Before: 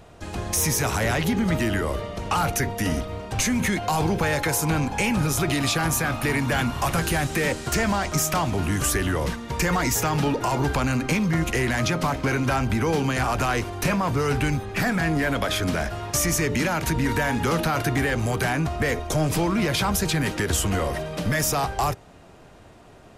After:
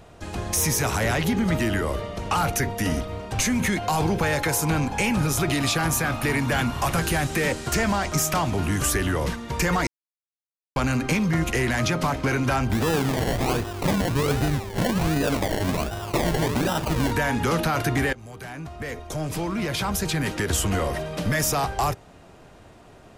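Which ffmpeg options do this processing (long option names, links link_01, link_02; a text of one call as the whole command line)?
ffmpeg -i in.wav -filter_complex "[0:a]asplit=3[link_01][link_02][link_03];[link_01]afade=type=out:start_time=12.71:duration=0.02[link_04];[link_02]acrusher=samples=28:mix=1:aa=0.000001:lfo=1:lforange=16.8:lforate=1.3,afade=type=in:start_time=12.71:duration=0.02,afade=type=out:start_time=17.1:duration=0.02[link_05];[link_03]afade=type=in:start_time=17.1:duration=0.02[link_06];[link_04][link_05][link_06]amix=inputs=3:normalize=0,asplit=4[link_07][link_08][link_09][link_10];[link_07]atrim=end=9.87,asetpts=PTS-STARTPTS,afade=type=out:start_time=9.866:duration=0.004:curve=hsin[link_11];[link_08]atrim=start=9.87:end=10.76,asetpts=PTS-STARTPTS,volume=0[link_12];[link_09]atrim=start=10.76:end=18.13,asetpts=PTS-STARTPTS,afade=type=in:duration=0.004:curve=hsin,afade=type=out:start_time=7.366:duration=0.004:curve=hsin:silence=0.0944061[link_13];[link_10]atrim=start=18.13,asetpts=PTS-STARTPTS,afade=type=in:duration=2.54:silence=0.0944061[link_14];[link_11][link_12][link_13][link_14]concat=n=4:v=0:a=1" out.wav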